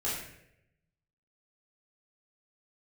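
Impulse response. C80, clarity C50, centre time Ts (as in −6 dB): 4.5 dB, 1.5 dB, 58 ms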